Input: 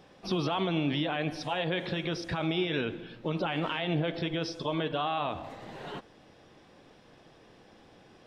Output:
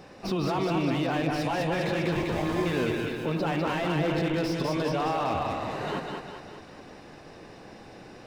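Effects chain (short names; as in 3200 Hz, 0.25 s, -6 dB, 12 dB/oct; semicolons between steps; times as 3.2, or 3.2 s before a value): notch 3300 Hz, Q 5.6; in parallel at -1 dB: negative-ratio compressor -35 dBFS, ratio -0.5; 2.12–2.66 on the sum: sample-rate reducer 1400 Hz, jitter 0%; split-band echo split 350 Hz, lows 0.152 s, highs 0.201 s, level -4 dB; slew limiter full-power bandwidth 59 Hz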